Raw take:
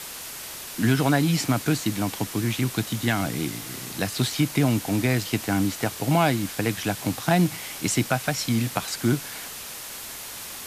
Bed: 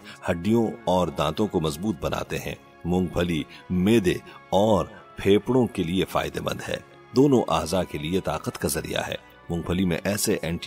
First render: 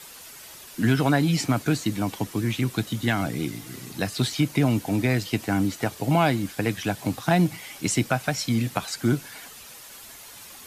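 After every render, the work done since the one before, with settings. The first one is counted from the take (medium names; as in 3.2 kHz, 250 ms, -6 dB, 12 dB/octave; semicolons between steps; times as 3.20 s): noise reduction 9 dB, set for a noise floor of -37 dBFS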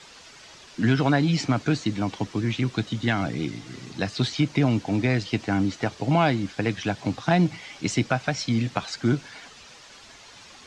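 low-pass 6.2 kHz 24 dB/octave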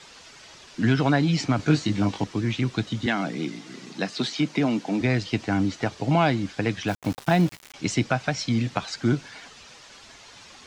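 1.57–2.24 s: doubling 20 ms -2.5 dB; 3.06–5.01 s: steep high-pass 160 Hz; 6.88–7.74 s: small samples zeroed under -33.5 dBFS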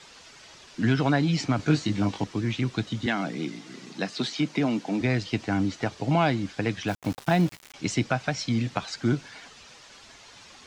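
trim -2 dB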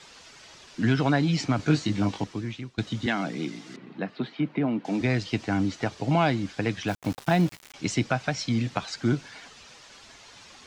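2.14–2.78 s: fade out linear, to -21.5 dB; 3.76–4.85 s: distance through air 500 m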